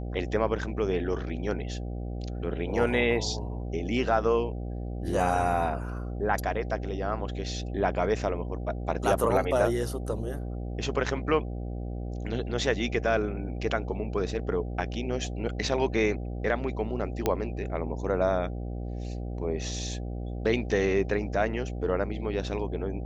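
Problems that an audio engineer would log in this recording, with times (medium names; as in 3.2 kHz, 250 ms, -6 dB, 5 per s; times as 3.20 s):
buzz 60 Hz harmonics 13 -34 dBFS
17.26 s: pop -11 dBFS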